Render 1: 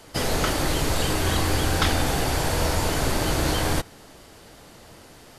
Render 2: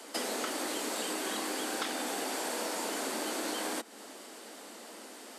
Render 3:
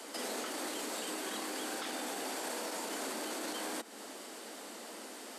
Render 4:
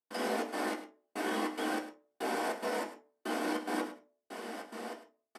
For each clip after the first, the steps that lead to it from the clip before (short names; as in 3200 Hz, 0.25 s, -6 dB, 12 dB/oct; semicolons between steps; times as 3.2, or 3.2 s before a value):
steep high-pass 210 Hz 72 dB/oct; bell 8200 Hz +6 dB 0.35 oct; compressor 4:1, threshold -34 dBFS, peak gain reduction 13 dB
limiter -31 dBFS, peak gain reduction 9.5 dB; gain +1 dB
step gate ".xxx.xx..." 143 bpm -60 dB; echo 0.104 s -13 dB; reverb RT60 0.40 s, pre-delay 3 ms, DRR -2.5 dB; gain -5.5 dB